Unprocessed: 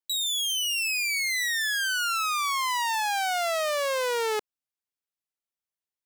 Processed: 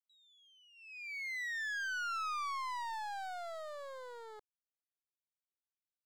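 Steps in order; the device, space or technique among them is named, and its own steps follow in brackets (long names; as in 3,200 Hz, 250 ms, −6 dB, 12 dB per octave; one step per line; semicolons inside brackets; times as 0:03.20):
walkie-talkie (band-pass filter 530–2,300 Hz; hard clipping −29 dBFS, distortion −10 dB; noise gate −30 dBFS, range −35 dB)
level +5 dB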